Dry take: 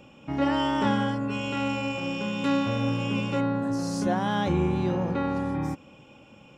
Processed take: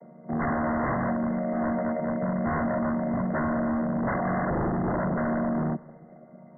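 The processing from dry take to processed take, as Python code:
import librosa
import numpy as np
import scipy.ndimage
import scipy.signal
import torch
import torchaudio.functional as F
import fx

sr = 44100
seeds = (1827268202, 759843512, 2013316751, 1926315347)

p1 = fx.chord_vocoder(x, sr, chord='minor triad', root=51)
p2 = fx.peak_eq(p1, sr, hz=630.0, db=12.5, octaves=0.34)
p3 = 10.0 ** (-25.0 / 20.0) * (np.abs((p2 / 10.0 ** (-25.0 / 20.0) + 3.0) % 4.0 - 2.0) - 1.0)
p4 = fx.brickwall_lowpass(p3, sr, high_hz=2100.0)
p5 = p4 + fx.echo_heads(p4, sr, ms=66, heads='first and third', feedback_pct=59, wet_db=-24, dry=0)
y = F.gain(torch.from_numpy(p5), 3.5).numpy()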